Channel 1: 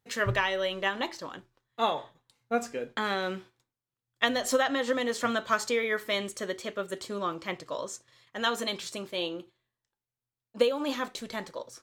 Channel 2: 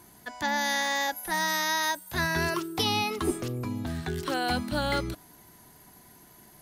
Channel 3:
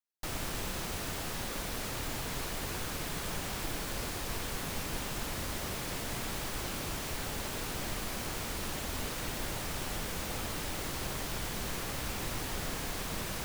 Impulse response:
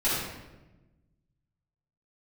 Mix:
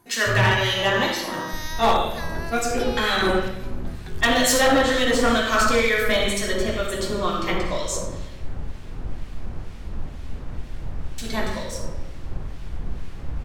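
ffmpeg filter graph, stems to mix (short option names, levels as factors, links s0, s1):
-filter_complex "[0:a]highshelf=f=2900:g=6.5,volume=1.26,asplit=3[s0][s1][s2];[s0]atrim=end=8.33,asetpts=PTS-STARTPTS,afade=t=out:st=8.326:d=0.004:c=hsin[s3];[s1]atrim=start=8.33:end=11.18,asetpts=PTS-STARTPTS,volume=0[s4];[s2]atrim=start=11.18,asetpts=PTS-STARTPTS,afade=t=in:d=0.004:c=hsin[s5];[s3][s4][s5]concat=n=3:v=0:a=1,asplit=2[s6][s7];[s7]volume=0.596[s8];[1:a]volume=0.596[s9];[2:a]aemphasis=mode=reproduction:type=riaa,adelay=1300,volume=0.562,asplit=2[s10][s11];[s11]volume=0.0668[s12];[3:a]atrim=start_sample=2205[s13];[s8][s12]amix=inputs=2:normalize=0[s14];[s14][s13]afir=irnorm=-1:irlink=0[s15];[s6][s9][s10][s15]amix=inputs=4:normalize=0,acrossover=split=1700[s16][s17];[s16]aeval=exprs='val(0)*(1-0.5/2+0.5/2*cos(2*PI*2.1*n/s))':c=same[s18];[s17]aeval=exprs='val(0)*(1-0.5/2-0.5/2*cos(2*PI*2.1*n/s))':c=same[s19];[s18][s19]amix=inputs=2:normalize=0,asoftclip=type=hard:threshold=0.237"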